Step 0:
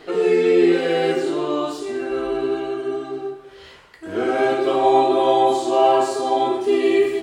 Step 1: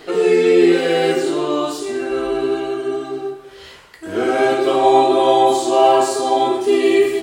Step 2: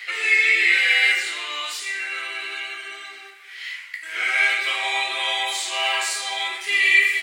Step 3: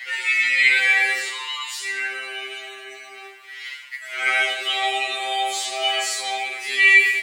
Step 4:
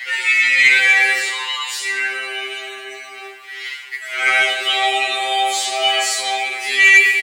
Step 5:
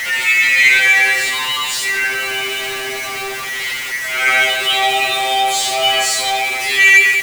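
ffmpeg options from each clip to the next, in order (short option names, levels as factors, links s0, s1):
-af "highshelf=f=5700:g=8.5,volume=1.41"
-af "highpass=f=2100:t=q:w=6.4"
-af "acrusher=bits=10:mix=0:aa=0.000001,afftfilt=real='re*2.45*eq(mod(b,6),0)':imag='im*2.45*eq(mod(b,6),0)':win_size=2048:overlap=0.75,volume=1.33"
-filter_complex "[0:a]acontrast=70,asplit=2[s0][s1];[s1]adelay=333,lowpass=f=2000:p=1,volume=0.141,asplit=2[s2][s3];[s3]adelay=333,lowpass=f=2000:p=1,volume=0.54,asplit=2[s4][s5];[s5]adelay=333,lowpass=f=2000:p=1,volume=0.54,asplit=2[s6][s7];[s7]adelay=333,lowpass=f=2000:p=1,volume=0.54,asplit=2[s8][s9];[s9]adelay=333,lowpass=f=2000:p=1,volume=0.54[s10];[s0][s2][s4][s6][s8][s10]amix=inputs=6:normalize=0,volume=0.891"
-af "aeval=exprs='val(0)+0.5*0.1*sgn(val(0))':c=same"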